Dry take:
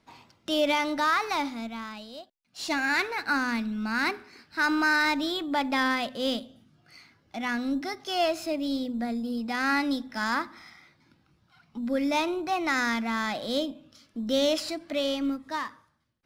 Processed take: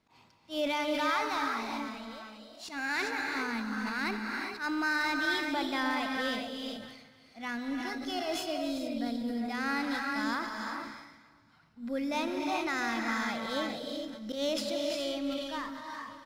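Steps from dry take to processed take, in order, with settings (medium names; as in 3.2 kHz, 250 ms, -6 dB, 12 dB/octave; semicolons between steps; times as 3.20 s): slow attack 105 ms; feedback delay 290 ms, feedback 47%, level -19.5 dB; gated-style reverb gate 440 ms rising, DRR 1.5 dB; decay stretcher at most 50 dB/s; trim -7 dB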